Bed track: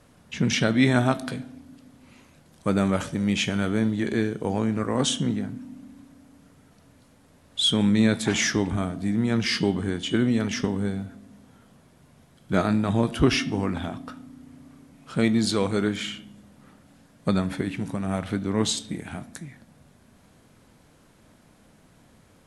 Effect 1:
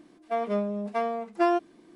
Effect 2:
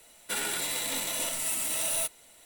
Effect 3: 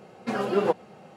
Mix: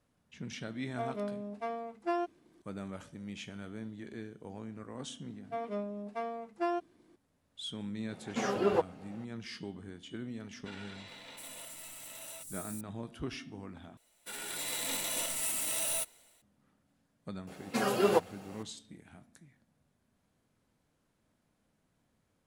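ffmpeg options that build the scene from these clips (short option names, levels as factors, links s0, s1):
-filter_complex "[1:a]asplit=2[s0][s1];[3:a]asplit=2[s2][s3];[2:a]asplit=2[s4][s5];[0:a]volume=0.106[s6];[s4]acrossover=split=320|5000[s7][s8][s9];[s7]adelay=180[s10];[s9]adelay=720[s11];[s10][s8][s11]amix=inputs=3:normalize=0[s12];[s5]dynaudnorm=f=240:g=5:m=3.76[s13];[s3]aemphasis=mode=production:type=75fm[s14];[s6]asplit=2[s15][s16];[s15]atrim=end=13.974[s17];[s13]atrim=end=2.45,asetpts=PTS-STARTPTS,volume=0.188[s18];[s16]atrim=start=16.416[s19];[s0]atrim=end=1.95,asetpts=PTS-STARTPTS,volume=0.335,afade=t=in:d=0.004:c=hsin,afade=t=out:st=1.946:d=0.004:c=hsin,adelay=670[s20];[s1]atrim=end=1.95,asetpts=PTS-STARTPTS,volume=0.335,afade=t=in:d=0.004:c=hsin,afade=t=out:st=1.946:d=0.004:c=hsin,adelay=229761S[s21];[s2]atrim=end=1.16,asetpts=PTS-STARTPTS,volume=0.562,afade=t=in:d=0.004:c=hsin,afade=t=out:st=1.156:d=0.004:c=hsin,adelay=8090[s22];[s12]atrim=end=2.45,asetpts=PTS-STARTPTS,volume=0.2,afade=t=in:d=0.004:c=hsin,afade=t=out:st=2.446:d=0.004:c=hsin,adelay=10360[s23];[s14]atrim=end=1.16,asetpts=PTS-STARTPTS,volume=0.75,afade=t=in:d=0.004:c=hsin,afade=t=out:st=1.156:d=0.004:c=hsin,adelay=17470[s24];[s17][s18]acrossfade=d=0.004:c1=hsin:c2=hsin[s25];[s25][s19]acrossfade=d=0.004:c1=hsin:c2=hsin[s26];[s26][s20][s21][s22][s23][s24]amix=inputs=6:normalize=0"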